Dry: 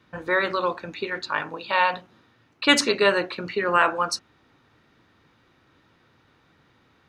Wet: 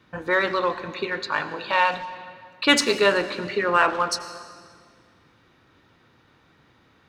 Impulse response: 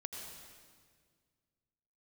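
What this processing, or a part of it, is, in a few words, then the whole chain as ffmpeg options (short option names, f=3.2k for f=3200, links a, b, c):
saturated reverb return: -filter_complex "[0:a]asplit=2[a][b];[1:a]atrim=start_sample=2205[c];[b][c]afir=irnorm=-1:irlink=0,asoftclip=type=tanh:threshold=-24dB,volume=-4dB[d];[a][d]amix=inputs=2:normalize=0,volume=-1dB"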